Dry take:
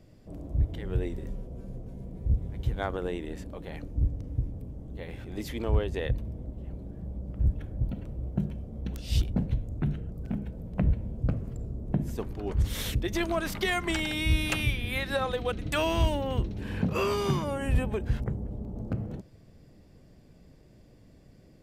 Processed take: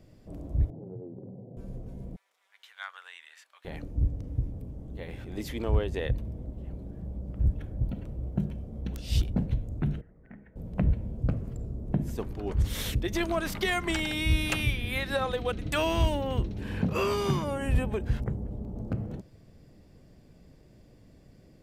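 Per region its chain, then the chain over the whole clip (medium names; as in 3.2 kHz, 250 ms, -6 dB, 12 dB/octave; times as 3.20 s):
0.70–1.57 s: Chebyshev band-pass 110–820 Hz, order 4 + compression 4:1, threshold -38 dBFS + distance through air 380 m
2.16–3.65 s: high-pass 1.3 kHz 24 dB/octave + treble shelf 8.1 kHz -8.5 dB
10.01–10.56 s: four-pole ladder low-pass 2 kHz, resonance 80% + peaking EQ 75 Hz -9.5 dB 2.5 oct
whole clip: none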